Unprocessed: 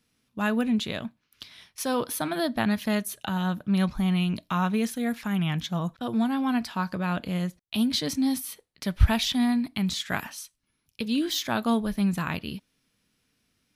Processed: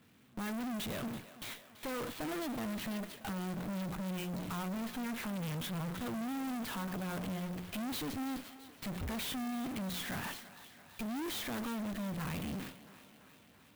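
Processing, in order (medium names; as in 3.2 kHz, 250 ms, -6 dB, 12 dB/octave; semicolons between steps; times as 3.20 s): jump at every zero crossing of -31 dBFS; low-pass 4.2 kHz 24 dB/octave; hum notches 60/120/180 Hz; gate with hold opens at -30 dBFS; high-pass 96 Hz 12 dB/octave; bass shelf 240 Hz +7 dB; valve stage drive 35 dB, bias 0.7; thinning echo 334 ms, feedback 68%, high-pass 270 Hz, level -15 dB; sampling jitter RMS 0.039 ms; trim -2 dB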